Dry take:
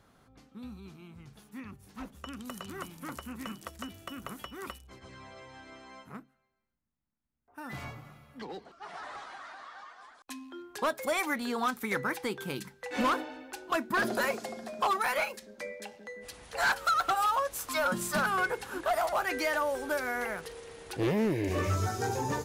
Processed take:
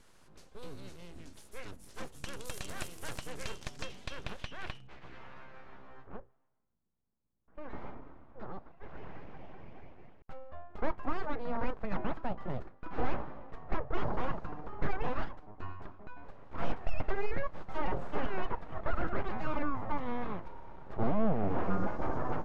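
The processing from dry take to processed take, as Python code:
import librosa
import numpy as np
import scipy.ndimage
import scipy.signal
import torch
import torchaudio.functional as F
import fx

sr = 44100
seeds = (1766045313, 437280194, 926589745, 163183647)

y = np.abs(x)
y = fx.filter_sweep_lowpass(y, sr, from_hz=10000.0, to_hz=1000.0, start_s=2.99, end_s=6.14, q=1.0)
y = fx.bass_treble(y, sr, bass_db=4, treble_db=5)
y = y * 10.0 ** (1.0 / 20.0)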